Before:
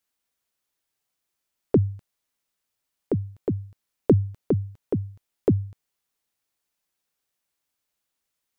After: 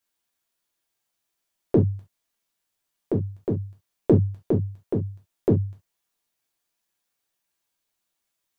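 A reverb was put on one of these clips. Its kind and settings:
reverb whose tail is shaped and stops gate 90 ms falling, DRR −0.5 dB
level −2 dB

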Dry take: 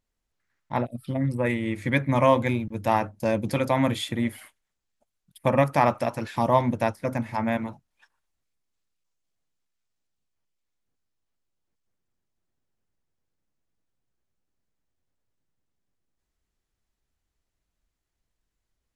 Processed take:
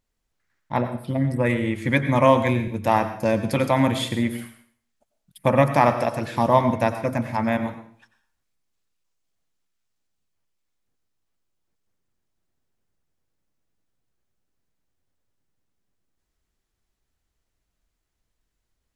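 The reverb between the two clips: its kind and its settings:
dense smooth reverb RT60 0.51 s, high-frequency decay 0.95×, pre-delay 80 ms, DRR 9.5 dB
level +3 dB

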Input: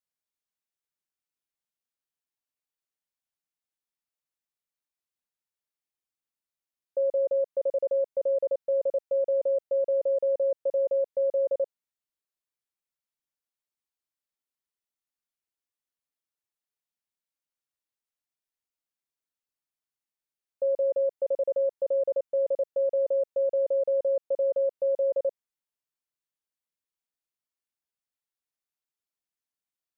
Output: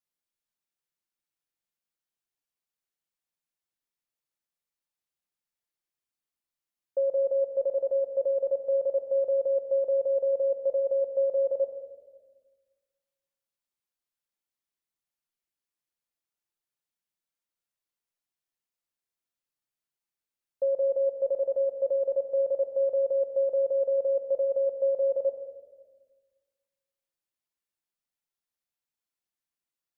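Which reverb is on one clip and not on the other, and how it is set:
rectangular room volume 1,100 cubic metres, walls mixed, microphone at 0.85 metres
level −1 dB

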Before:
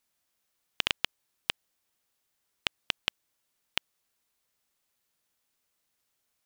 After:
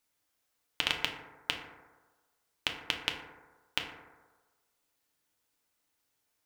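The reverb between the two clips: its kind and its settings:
feedback delay network reverb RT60 1.3 s, low-frequency decay 0.8×, high-frequency decay 0.3×, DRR 1 dB
level −2 dB

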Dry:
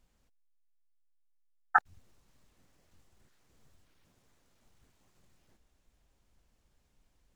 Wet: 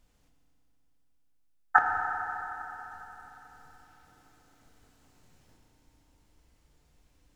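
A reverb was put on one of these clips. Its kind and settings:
feedback delay network reverb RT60 3.9 s, high-frequency decay 0.85×, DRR 0.5 dB
level +3.5 dB

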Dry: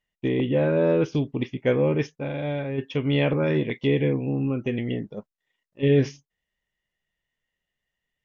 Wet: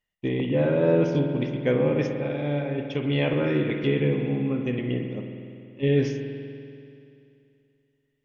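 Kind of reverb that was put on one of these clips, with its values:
spring reverb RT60 2.6 s, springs 48 ms, chirp 25 ms, DRR 4 dB
level −2 dB

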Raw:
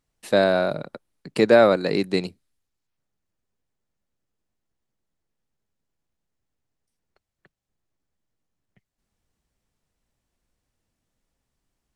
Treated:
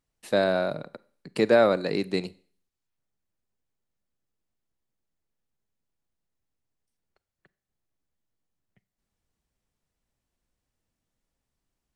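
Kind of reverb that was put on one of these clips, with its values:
four-comb reverb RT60 0.47 s, combs from 32 ms, DRR 20 dB
level −4.5 dB

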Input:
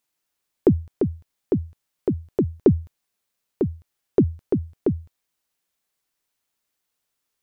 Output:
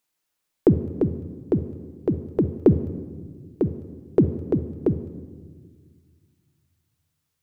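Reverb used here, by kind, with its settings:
rectangular room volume 1,800 cubic metres, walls mixed, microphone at 0.58 metres

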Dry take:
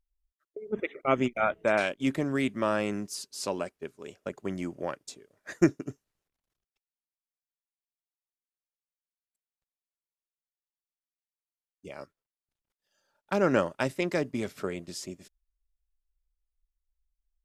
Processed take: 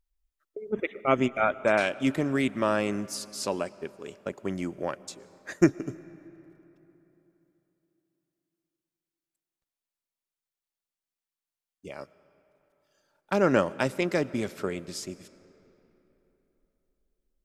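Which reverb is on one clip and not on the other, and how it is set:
comb and all-pass reverb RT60 3.6 s, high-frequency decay 0.65×, pre-delay 75 ms, DRR 19 dB
level +2 dB

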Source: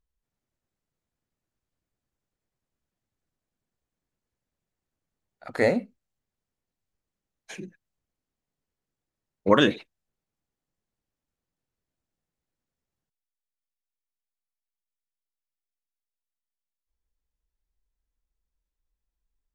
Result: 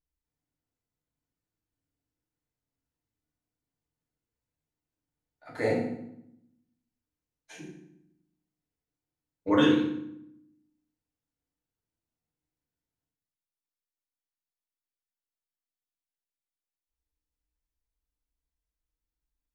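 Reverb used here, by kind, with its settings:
feedback delay network reverb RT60 0.76 s, low-frequency decay 1.5×, high-frequency decay 0.8×, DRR −6 dB
level −12 dB

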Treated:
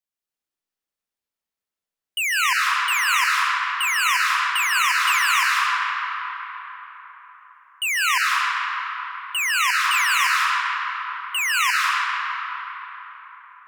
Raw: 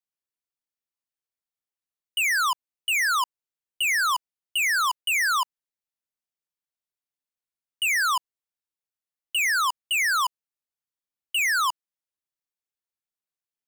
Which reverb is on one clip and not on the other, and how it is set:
comb and all-pass reverb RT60 4.5 s, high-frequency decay 0.5×, pre-delay 115 ms, DRR −4.5 dB

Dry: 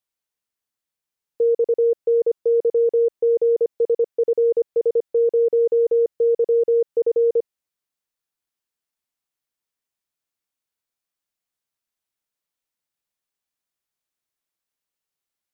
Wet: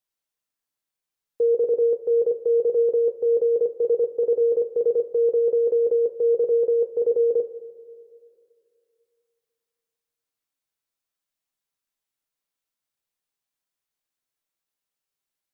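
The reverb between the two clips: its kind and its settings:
coupled-rooms reverb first 0.29 s, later 2.6 s, from −18 dB, DRR 5 dB
level −2 dB

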